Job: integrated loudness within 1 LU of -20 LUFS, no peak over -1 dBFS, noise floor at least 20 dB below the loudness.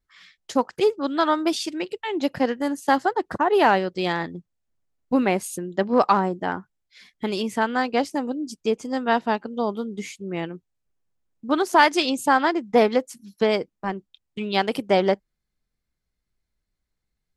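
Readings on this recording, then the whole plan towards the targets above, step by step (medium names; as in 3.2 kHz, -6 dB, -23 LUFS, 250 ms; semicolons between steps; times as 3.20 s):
loudness -23.0 LUFS; peak level -3.0 dBFS; loudness target -20.0 LUFS
-> trim +3 dB; peak limiter -1 dBFS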